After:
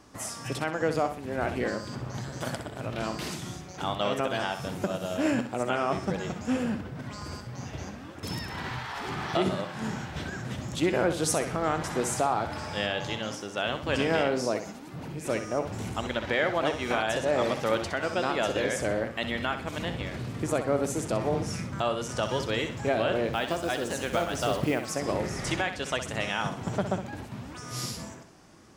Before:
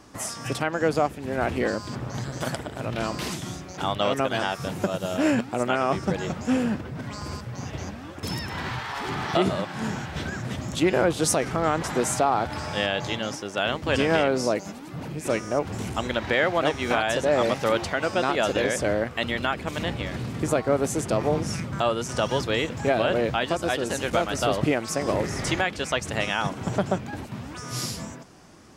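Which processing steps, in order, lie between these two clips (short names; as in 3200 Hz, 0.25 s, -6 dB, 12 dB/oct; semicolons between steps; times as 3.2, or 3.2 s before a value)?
23.33–24.91 companded quantiser 6-bit; flutter echo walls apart 10.9 m, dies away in 0.4 s; gain -4.5 dB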